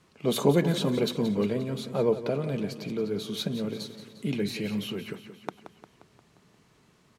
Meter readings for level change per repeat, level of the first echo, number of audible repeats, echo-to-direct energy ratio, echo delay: -5.0 dB, -12.0 dB, 5, -10.5 dB, 176 ms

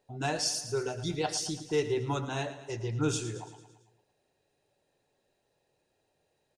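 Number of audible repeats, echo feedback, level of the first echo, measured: 5, 56%, -13.0 dB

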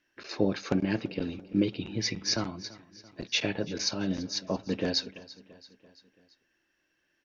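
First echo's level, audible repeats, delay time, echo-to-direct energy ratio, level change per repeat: -19.5 dB, 3, 337 ms, -18.0 dB, -5.0 dB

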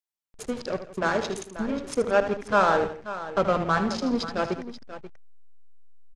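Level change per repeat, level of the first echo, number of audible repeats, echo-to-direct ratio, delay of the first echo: no regular repeats, -11.0 dB, 3, -8.5 dB, 77 ms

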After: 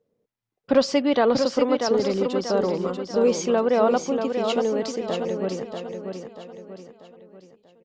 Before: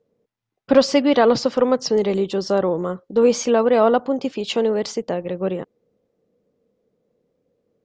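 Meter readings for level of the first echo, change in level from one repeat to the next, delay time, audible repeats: -6.0 dB, -7.5 dB, 638 ms, 4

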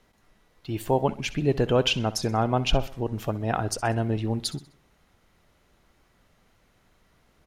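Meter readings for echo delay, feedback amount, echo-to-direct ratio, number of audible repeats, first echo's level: 64 ms, 44%, -16.5 dB, 3, -17.5 dB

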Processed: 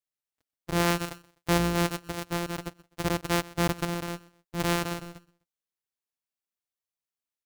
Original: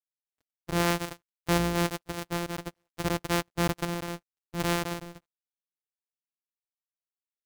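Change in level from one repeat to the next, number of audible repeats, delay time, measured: -9.5 dB, 2, 127 ms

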